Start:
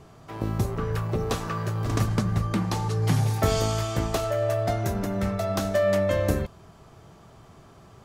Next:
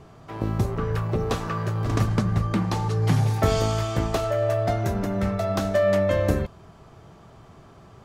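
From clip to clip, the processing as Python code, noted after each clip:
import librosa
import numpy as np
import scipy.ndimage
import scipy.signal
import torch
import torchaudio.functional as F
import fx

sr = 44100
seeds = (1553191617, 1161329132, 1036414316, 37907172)

y = fx.high_shelf(x, sr, hz=5600.0, db=-7.5)
y = y * 10.0 ** (2.0 / 20.0)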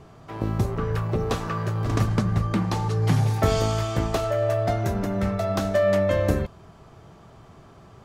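y = x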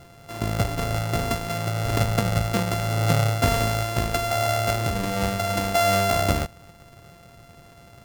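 y = np.r_[np.sort(x[:len(x) // 64 * 64].reshape(-1, 64), axis=1).ravel(), x[len(x) // 64 * 64:]]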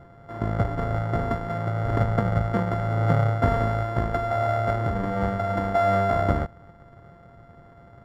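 y = scipy.signal.savgol_filter(x, 41, 4, mode='constant')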